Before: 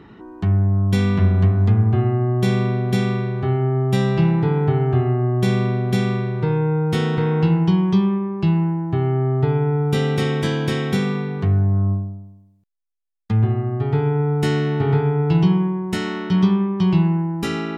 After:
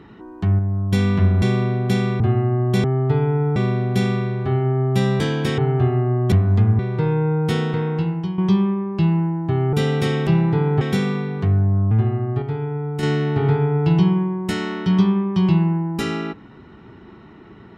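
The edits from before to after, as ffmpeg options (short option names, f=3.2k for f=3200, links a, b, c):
-filter_complex "[0:a]asplit=18[a][b][c][d][e][f][g][h][i][j][k][l][m][n][o][p][q][r];[a]atrim=end=0.592[s];[b]atrim=start=0.588:end=0.922,asetpts=PTS-STARTPTS,volume=-4dB[t];[c]atrim=start=0.918:end=1.422[u];[d]atrim=start=5.448:end=6.232[v];[e]atrim=start=1.888:end=2.532[w];[f]atrim=start=9.168:end=9.892[x];[g]atrim=start=2.528:end=4.172[y];[h]atrim=start=10.428:end=10.812[z];[i]atrim=start=4.708:end=5.452[aa];[j]atrim=start=1.418:end=1.892[ab];[k]atrim=start=6.228:end=7.82,asetpts=PTS-STARTPTS,afade=t=out:st=0.692:d=0.9:silence=0.281838[ac];[l]atrim=start=7.82:end=9.172,asetpts=PTS-STARTPTS,afade=t=in:d=0.004:c=hsin:silence=0.281838[ad];[m]atrim=start=9.888:end=10.432[ae];[n]atrim=start=4.168:end=4.712[af];[o]atrim=start=10.808:end=11.912[ag];[p]atrim=start=13.348:end=13.862[ah];[q]atrim=start=13.858:end=14.472,asetpts=PTS-STARTPTS,volume=-6dB[ai];[r]atrim=start=14.468[aj];[s][t]acrossfade=d=0.004:c1=hsin:c2=hsin[ak];[ak][u]acrossfade=d=0.004:c1=hsin:c2=hsin[al];[al][v]acrossfade=d=0.004:c1=hsin:c2=hsin[am];[am][w]acrossfade=d=0.004:c1=hsin:c2=hsin[an];[an][x]acrossfade=d=0.004:c1=hsin:c2=hsin[ao];[ao][y]acrossfade=d=0.004:c1=hsin:c2=hsin[ap];[ap][z]acrossfade=d=0.004:c1=hsin:c2=hsin[aq];[aq][aa]acrossfade=d=0.004:c1=hsin:c2=hsin[ar];[ar][ab]acrossfade=d=0.004:c1=hsin:c2=hsin[as];[ac][ad]concat=n=2:v=0:a=1[at];[as][at]acrossfade=d=0.004:c1=hsin:c2=hsin[au];[au][ae]acrossfade=d=0.004:c1=hsin:c2=hsin[av];[av][af]acrossfade=d=0.004:c1=hsin:c2=hsin[aw];[aw][ag]acrossfade=d=0.004:c1=hsin:c2=hsin[ax];[ax][ah]acrossfade=d=0.004:c1=hsin:c2=hsin[ay];[ay][ai]acrossfade=d=0.004:c1=hsin:c2=hsin[az];[az][aj]acrossfade=d=0.004:c1=hsin:c2=hsin"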